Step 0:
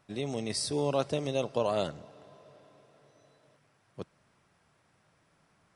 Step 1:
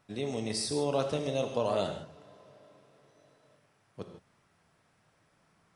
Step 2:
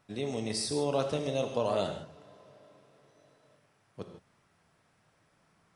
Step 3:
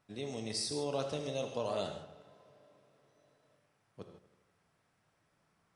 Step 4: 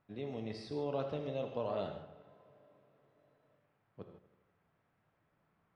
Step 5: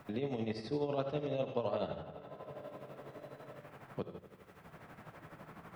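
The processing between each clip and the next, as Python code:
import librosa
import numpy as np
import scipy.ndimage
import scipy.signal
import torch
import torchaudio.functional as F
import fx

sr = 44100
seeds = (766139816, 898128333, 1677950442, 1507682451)

y1 = fx.rev_gated(x, sr, seeds[0], gate_ms=180, shape='flat', drr_db=5.0)
y1 = y1 * 10.0 ** (-1.5 / 20.0)
y2 = y1
y3 = fx.dynamic_eq(y2, sr, hz=5400.0, q=0.88, threshold_db=-53.0, ratio=4.0, max_db=5)
y3 = fx.echo_wet_lowpass(y3, sr, ms=80, feedback_pct=65, hz=2700.0, wet_db=-15.0)
y3 = y3 * 10.0 ** (-6.5 / 20.0)
y4 = fx.air_absorb(y3, sr, metres=370.0)
y5 = fx.hum_notches(y4, sr, base_hz=50, count=2)
y5 = y5 * (1.0 - 0.63 / 2.0 + 0.63 / 2.0 * np.cos(2.0 * np.pi * 12.0 * (np.arange(len(y5)) / sr)))
y5 = fx.band_squash(y5, sr, depth_pct=70)
y5 = y5 * 10.0 ** (6.5 / 20.0)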